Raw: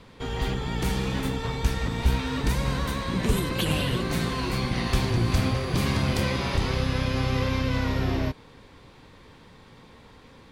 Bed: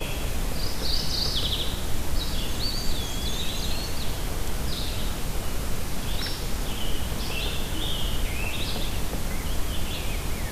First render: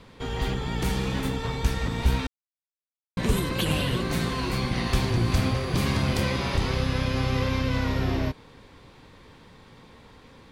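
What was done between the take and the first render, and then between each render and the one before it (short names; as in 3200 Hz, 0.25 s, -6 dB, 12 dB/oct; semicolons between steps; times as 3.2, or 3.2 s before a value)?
2.27–3.17 mute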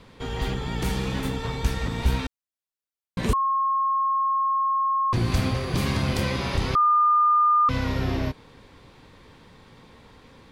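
3.33–5.13 bleep 1080 Hz -20 dBFS; 6.75–7.69 bleep 1210 Hz -15.5 dBFS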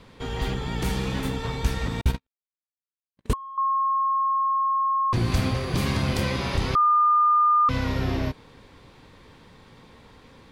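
2.01–3.58 gate -22 dBFS, range -58 dB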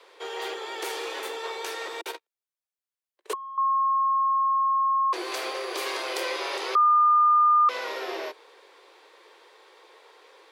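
steep high-pass 350 Hz 72 dB/oct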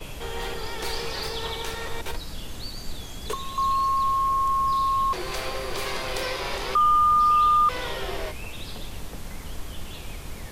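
add bed -8 dB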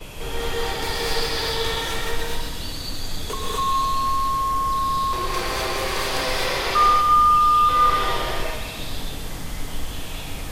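thinning echo 0.13 s, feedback 56%, level -7 dB; non-linear reverb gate 0.28 s rising, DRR -4 dB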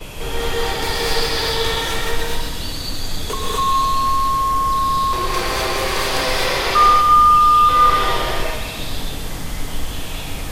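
gain +4.5 dB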